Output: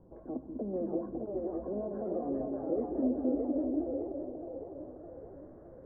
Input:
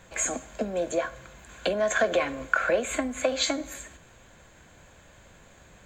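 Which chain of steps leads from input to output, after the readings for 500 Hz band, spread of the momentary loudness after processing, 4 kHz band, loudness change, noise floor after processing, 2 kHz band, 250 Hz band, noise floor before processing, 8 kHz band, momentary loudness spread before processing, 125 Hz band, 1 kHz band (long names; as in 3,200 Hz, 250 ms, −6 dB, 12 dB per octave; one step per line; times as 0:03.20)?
−7.0 dB, 16 LU, below −40 dB, −7.5 dB, −52 dBFS, below −40 dB, +2.5 dB, −55 dBFS, below −40 dB, 15 LU, −2.5 dB, −13.0 dB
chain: downward compressor, threshold −26 dBFS, peak gain reduction 9 dB
brickwall limiter −23.5 dBFS, peak gain reduction 11.5 dB
low-pass filter sweep 340 Hz → 1,400 Hz, 0:03.07–0:05.15
transistor ladder low-pass 2,300 Hz, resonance 25%
low-pass filter sweep 970 Hz → 410 Hz, 0:02.04–0:02.85
delay with pitch and tempo change per echo 620 ms, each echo +2 semitones, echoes 2, each echo −6 dB
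echo with a time of its own for lows and highs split 350 Hz, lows 196 ms, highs 612 ms, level −3 dB
level +1 dB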